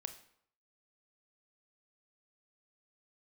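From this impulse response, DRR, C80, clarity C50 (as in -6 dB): 8.5 dB, 15.0 dB, 12.0 dB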